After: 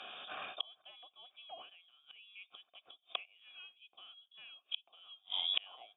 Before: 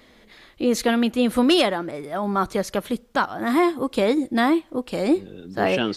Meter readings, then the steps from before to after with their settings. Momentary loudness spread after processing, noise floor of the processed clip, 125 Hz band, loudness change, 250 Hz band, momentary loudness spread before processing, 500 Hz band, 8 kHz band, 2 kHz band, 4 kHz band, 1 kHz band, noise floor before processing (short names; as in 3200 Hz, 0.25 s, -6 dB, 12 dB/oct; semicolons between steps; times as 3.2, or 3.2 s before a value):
20 LU, -80 dBFS, under -40 dB, -18.5 dB, under -40 dB, 9 LU, -36.5 dB, under -40 dB, -22.0 dB, -9.0 dB, -27.0 dB, -54 dBFS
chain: in parallel at -3 dB: vocal rider within 4 dB 0.5 s; on the sum: flipped gate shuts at -20 dBFS, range -40 dB; inverted band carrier 3600 Hz; vowel filter a; gain +16 dB